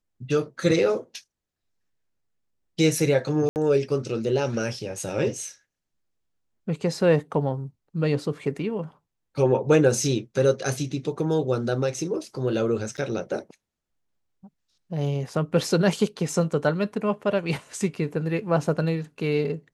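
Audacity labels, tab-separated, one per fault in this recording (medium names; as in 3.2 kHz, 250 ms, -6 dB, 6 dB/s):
3.490000	3.560000	dropout 69 ms
12.970000	12.980000	dropout 8.8 ms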